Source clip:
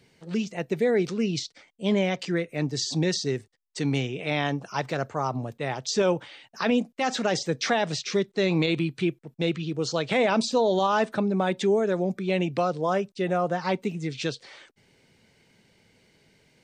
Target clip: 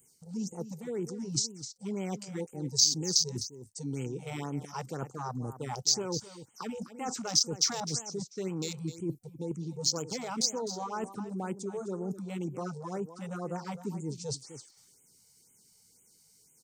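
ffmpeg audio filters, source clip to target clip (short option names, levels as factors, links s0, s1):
-filter_complex "[0:a]afwtdn=0.0224,superequalizer=8b=0.398:11b=0.398:12b=0.562,alimiter=limit=0.126:level=0:latency=1:release=346,areverse,acompressor=threshold=0.0126:ratio=6,areverse,aexciter=amount=8.1:drive=8.8:freq=5100,asplit=2[s0][s1];[s1]aecho=0:1:256:0.237[s2];[s0][s2]amix=inputs=2:normalize=0,afftfilt=real='re*(1-between(b*sr/1024,270*pow(4700/270,0.5+0.5*sin(2*PI*2*pts/sr))/1.41,270*pow(4700/270,0.5+0.5*sin(2*PI*2*pts/sr))*1.41))':imag='im*(1-between(b*sr/1024,270*pow(4700/270,0.5+0.5*sin(2*PI*2*pts/sr))/1.41,270*pow(4700/270,0.5+0.5*sin(2*PI*2*pts/sr))*1.41))':win_size=1024:overlap=0.75,volume=1.68"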